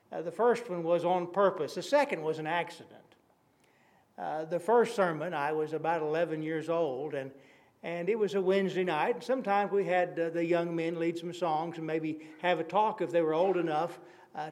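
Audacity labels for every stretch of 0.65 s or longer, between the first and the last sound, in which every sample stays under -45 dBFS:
3.120000	4.180000	silence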